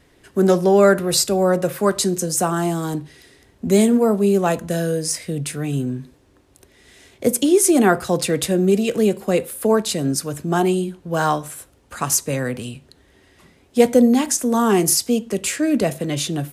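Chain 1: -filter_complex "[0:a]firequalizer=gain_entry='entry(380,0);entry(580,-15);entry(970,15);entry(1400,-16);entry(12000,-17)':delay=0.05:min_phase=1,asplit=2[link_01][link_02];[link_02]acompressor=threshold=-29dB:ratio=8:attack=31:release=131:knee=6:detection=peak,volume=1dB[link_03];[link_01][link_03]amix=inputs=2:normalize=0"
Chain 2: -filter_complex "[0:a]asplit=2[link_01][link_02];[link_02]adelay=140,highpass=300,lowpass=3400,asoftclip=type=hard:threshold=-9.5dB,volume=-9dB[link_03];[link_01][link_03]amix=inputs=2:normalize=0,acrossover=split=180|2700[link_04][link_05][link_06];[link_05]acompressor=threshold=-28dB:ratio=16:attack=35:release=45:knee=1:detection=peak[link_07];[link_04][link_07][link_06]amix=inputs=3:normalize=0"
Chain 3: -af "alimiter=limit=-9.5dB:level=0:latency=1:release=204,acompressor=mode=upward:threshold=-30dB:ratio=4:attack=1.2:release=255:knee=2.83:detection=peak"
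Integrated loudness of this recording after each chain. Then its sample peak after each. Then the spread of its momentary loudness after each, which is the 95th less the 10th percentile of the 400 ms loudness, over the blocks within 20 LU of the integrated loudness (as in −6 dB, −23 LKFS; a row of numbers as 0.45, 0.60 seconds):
−18.0, −23.0, −21.0 LKFS; −1.5, −4.5, −9.5 dBFS; 10, 10, 14 LU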